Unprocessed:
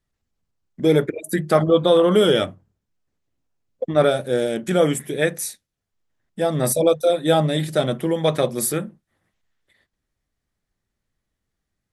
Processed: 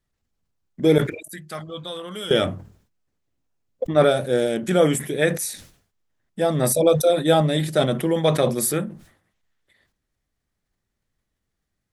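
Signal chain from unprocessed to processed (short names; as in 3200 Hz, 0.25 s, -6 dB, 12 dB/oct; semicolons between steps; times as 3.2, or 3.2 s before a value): 0.98–2.31 passive tone stack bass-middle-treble 5-5-5; sustainer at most 110 dB/s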